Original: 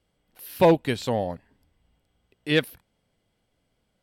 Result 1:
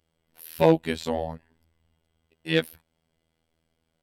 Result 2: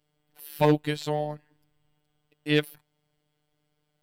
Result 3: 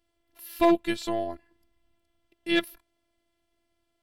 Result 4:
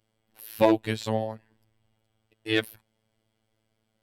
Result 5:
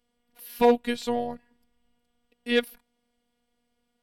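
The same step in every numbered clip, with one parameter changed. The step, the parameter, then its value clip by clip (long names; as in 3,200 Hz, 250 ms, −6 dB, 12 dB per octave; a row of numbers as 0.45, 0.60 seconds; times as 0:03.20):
phases set to zero, frequency: 81, 150, 340, 110, 240 Hertz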